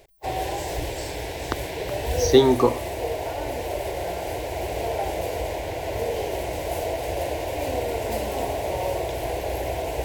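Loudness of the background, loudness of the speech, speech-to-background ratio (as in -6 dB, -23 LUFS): -28.5 LUFS, -19.5 LUFS, 9.0 dB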